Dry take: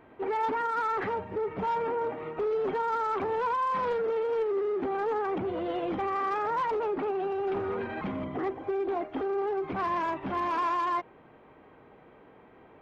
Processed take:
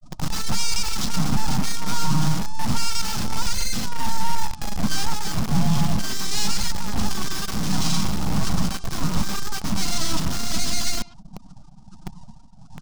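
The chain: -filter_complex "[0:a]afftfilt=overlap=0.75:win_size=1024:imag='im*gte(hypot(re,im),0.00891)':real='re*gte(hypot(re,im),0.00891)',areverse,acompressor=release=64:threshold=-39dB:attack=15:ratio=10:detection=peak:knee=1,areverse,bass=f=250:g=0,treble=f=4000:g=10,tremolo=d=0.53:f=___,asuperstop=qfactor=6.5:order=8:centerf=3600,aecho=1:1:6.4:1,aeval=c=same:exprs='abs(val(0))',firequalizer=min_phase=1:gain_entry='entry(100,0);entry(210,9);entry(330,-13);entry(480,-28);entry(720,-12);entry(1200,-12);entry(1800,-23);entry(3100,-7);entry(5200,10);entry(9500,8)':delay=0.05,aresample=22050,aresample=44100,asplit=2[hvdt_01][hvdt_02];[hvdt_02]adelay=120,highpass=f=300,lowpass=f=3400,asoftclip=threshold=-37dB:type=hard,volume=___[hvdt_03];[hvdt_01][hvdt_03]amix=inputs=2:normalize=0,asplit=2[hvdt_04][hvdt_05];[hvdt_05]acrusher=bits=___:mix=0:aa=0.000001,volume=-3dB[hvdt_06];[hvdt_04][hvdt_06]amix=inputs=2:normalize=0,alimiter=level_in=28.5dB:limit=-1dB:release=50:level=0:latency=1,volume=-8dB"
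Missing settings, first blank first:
1.4, -10dB, 7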